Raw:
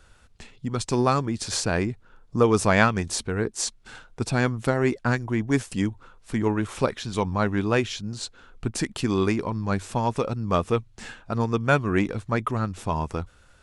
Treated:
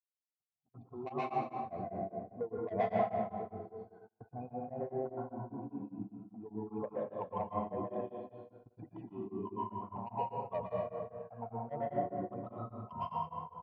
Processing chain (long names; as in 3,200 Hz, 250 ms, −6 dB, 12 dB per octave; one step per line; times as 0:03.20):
expanding power law on the bin magnitudes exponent 2.5
flanger swept by the level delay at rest 9.2 ms, full sweep at −20 dBFS
formant resonators in series a
multi-tap delay 187/262/266 ms −18/−13/−14 dB
soft clipping −32 dBFS, distortion −14 dB
high-pass filter 100 Hz 12 dB per octave
notch filter 1,200 Hz, Q 6.8
dense smooth reverb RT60 1.7 s, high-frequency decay 0.7×, pre-delay 105 ms, DRR −5.5 dB
noise gate −58 dBFS, range −27 dB
tremolo along a rectified sine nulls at 5 Hz
level +5.5 dB